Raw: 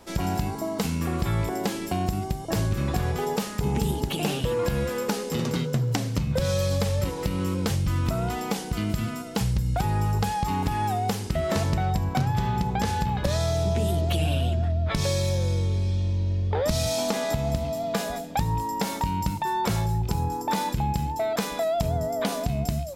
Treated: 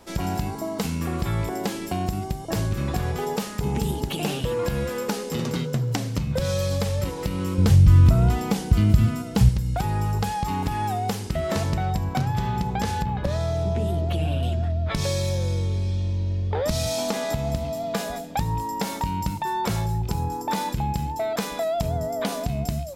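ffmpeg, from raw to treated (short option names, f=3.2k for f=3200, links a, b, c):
-filter_complex "[0:a]asettb=1/sr,asplit=3[a][b][c];[a]atrim=end=7.584[d];[b]atrim=start=7.58:end=9.49,asetpts=PTS-STARTPTS,afade=t=in:d=0.004:c=qsin,afade=t=out:st=1.906:d=0.004:c=qsin,equalizer=f=71:w=0.46:g=14[e];[c]atrim=start=9.486[f];[d][e]acrossfade=d=0.004:c1=hsin:c2=qsin[g];[g][f]acrossfade=d=0.004:c1=qsin:c2=hsin,asettb=1/sr,asplit=3[h][i][j];[h]atrim=end=13.024[k];[i]atrim=start=13.02:end=14.43,asetpts=PTS-STARTPTS,afade=t=in:d=0.004:c=qsin,afade=t=out:st=1.406:d=0.004:c=qsin,highshelf=f=3k:g=-10.5[l];[j]atrim=start=14.426[m];[k][l]acrossfade=d=0.004:c1=hsin:c2=qsin[n];[n][m]acrossfade=d=0.004:c1=qsin:c2=hsin"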